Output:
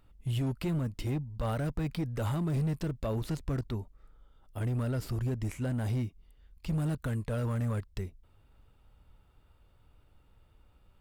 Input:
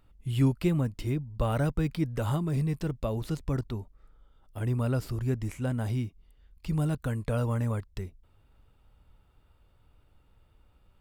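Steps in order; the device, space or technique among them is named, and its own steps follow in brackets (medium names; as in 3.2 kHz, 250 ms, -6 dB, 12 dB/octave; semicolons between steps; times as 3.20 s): limiter into clipper (peak limiter -22.5 dBFS, peak gain reduction 8 dB; hard clipper -26.5 dBFS, distortion -17 dB)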